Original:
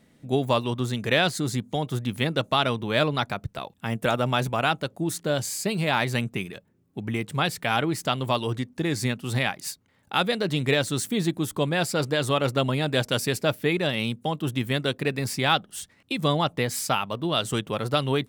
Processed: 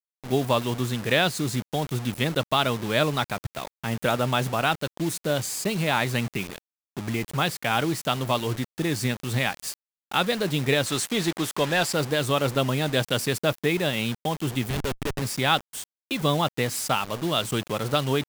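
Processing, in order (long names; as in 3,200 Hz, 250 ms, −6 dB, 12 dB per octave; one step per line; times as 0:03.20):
bit-depth reduction 6 bits, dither none
0:10.86–0:11.94: mid-hump overdrive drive 11 dB, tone 5,700 Hz, clips at −12 dBFS
0:14.70–0:15.22: comparator with hysteresis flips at −24.5 dBFS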